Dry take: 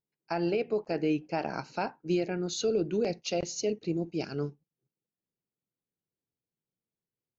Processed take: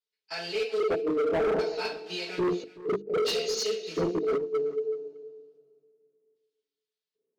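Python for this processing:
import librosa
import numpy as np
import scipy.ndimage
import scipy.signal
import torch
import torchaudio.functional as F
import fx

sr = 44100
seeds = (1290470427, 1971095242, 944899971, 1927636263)

p1 = fx.quant_dither(x, sr, seeds[0], bits=6, dither='none')
p2 = x + (p1 * librosa.db_to_amplitude(-9.0))
p3 = fx.filter_lfo_bandpass(p2, sr, shape='square', hz=0.63, low_hz=410.0, high_hz=3800.0, q=2.1)
p4 = fx.peak_eq(p3, sr, hz=440.0, db=11.5, octaves=0.26)
p5 = p4 + 0.51 * np.pad(p4, (int(4.6 * sr / 1000.0), 0))[:len(p4)]
p6 = fx.rev_double_slope(p5, sr, seeds[1], early_s=0.33, late_s=2.1, knee_db=-22, drr_db=-9.5)
p7 = fx.over_compress(p6, sr, threshold_db=-18.0, ratio=-0.5)
p8 = fx.hum_notches(p7, sr, base_hz=50, count=7)
p9 = np.clip(p8, -10.0 ** (-17.0 / 20.0), 10.0 ** (-17.0 / 20.0))
p10 = fx.high_shelf(p9, sr, hz=6100.0, db=-7.5)
p11 = p10 + fx.echo_single(p10, sr, ms=377, db=-19.0, dry=0)
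y = p11 * librosa.db_to_amplitude(-6.5)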